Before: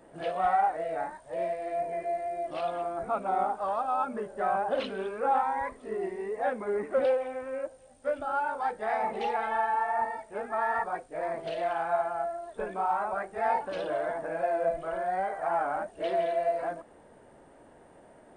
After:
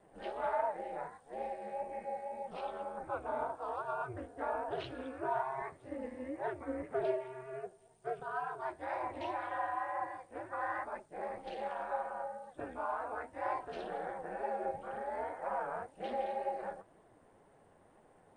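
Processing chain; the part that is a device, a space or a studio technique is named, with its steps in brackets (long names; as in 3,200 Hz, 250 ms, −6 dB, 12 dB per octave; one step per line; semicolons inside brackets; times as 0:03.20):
alien voice (ring modulation 130 Hz; flanger 2 Hz, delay 4.4 ms, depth 8.4 ms, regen +47%)
level −2 dB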